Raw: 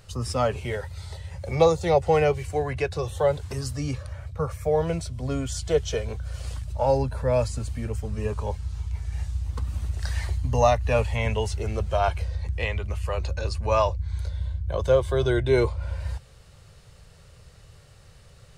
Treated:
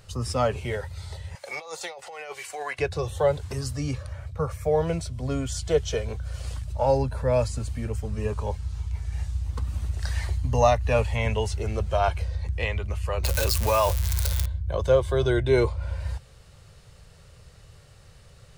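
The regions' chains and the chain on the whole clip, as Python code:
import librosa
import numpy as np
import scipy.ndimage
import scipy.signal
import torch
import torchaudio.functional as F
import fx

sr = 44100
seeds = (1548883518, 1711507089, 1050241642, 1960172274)

y = fx.chain(x, sr, fx.highpass(hz=920.0, slope=12),
    fx.over_compress(threshold_db=-36.0, ratio=-1.0), at=(1.35, 2.79))
y = fx.chain(y, sr, fx.crossing_spikes(level_db=-23.0),
    fx.low_shelf(hz=440.0, db=-4.5),
    fx.env_flatten(amount_pct=70), at=(13.23, 14.46))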